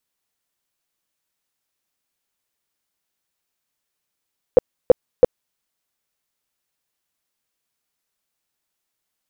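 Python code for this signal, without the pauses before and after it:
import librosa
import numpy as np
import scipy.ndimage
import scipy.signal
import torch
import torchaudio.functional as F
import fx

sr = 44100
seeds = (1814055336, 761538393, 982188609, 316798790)

y = fx.tone_burst(sr, hz=502.0, cycles=8, every_s=0.33, bursts=3, level_db=-4.0)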